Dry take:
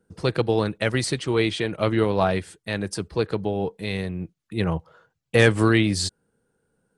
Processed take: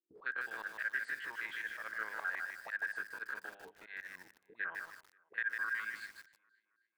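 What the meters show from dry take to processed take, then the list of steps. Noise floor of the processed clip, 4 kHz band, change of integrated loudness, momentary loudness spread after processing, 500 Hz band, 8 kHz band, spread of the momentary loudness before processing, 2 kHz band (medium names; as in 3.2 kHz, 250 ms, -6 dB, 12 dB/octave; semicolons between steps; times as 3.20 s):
-81 dBFS, -25.0 dB, -16.0 dB, 14 LU, -34.0 dB, -25.5 dB, 11 LU, -6.5 dB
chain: spectrogram pixelated in time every 50 ms; gate with hold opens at -43 dBFS; hum notches 50/100/150/200/250/300/350/400 Hz; harmonic-percussive split harmonic -16 dB; auto-wah 340–1600 Hz, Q 18, up, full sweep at -34 dBFS; peaking EQ 5.6 kHz -12.5 dB 0.38 oct; in parallel at +1 dB: gain riding within 4 dB 2 s; on the sum: slow attack 108 ms; compression 4:1, threshold -44 dBFS, peak gain reduction 11.5 dB; on a send: tape echo 267 ms, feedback 53%, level -21 dB, low-pass 5.4 kHz; on the sum: dynamic bell 1.8 kHz, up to +5 dB, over -58 dBFS, Q 1.6; bit-crushed delay 153 ms, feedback 35%, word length 10-bit, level -4 dB; trim +5 dB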